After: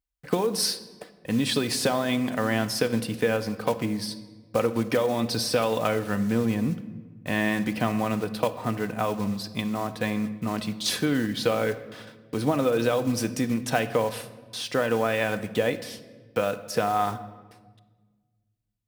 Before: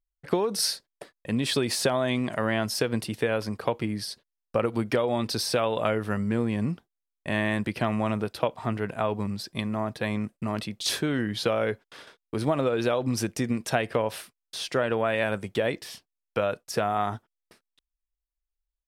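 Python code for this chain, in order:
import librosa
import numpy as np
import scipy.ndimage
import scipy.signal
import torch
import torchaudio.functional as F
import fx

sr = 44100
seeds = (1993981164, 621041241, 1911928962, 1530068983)

y = fx.block_float(x, sr, bits=5)
y = scipy.signal.sosfilt(scipy.signal.butter(2, 47.0, 'highpass', fs=sr, output='sos'), y)
y = fx.low_shelf(y, sr, hz=180.0, db=3.0)
y = y + 0.34 * np.pad(y, (int(4.0 * sr / 1000.0), 0))[:len(y)]
y = fx.room_shoebox(y, sr, seeds[0], volume_m3=1300.0, walls='mixed', distance_m=0.48)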